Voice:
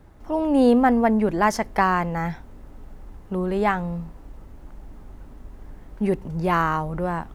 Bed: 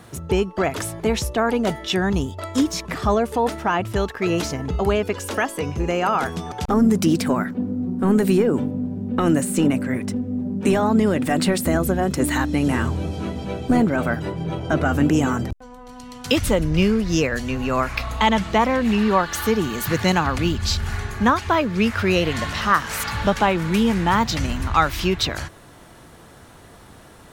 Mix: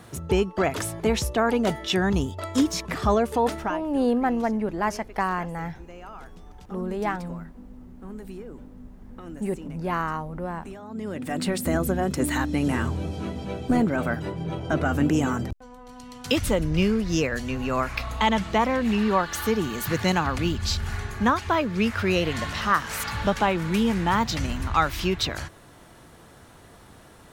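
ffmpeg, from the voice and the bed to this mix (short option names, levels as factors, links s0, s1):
-filter_complex "[0:a]adelay=3400,volume=0.501[s0];[1:a]volume=6.31,afade=t=out:st=3.58:d=0.22:silence=0.1,afade=t=in:st=10.87:d=0.88:silence=0.125893[s1];[s0][s1]amix=inputs=2:normalize=0"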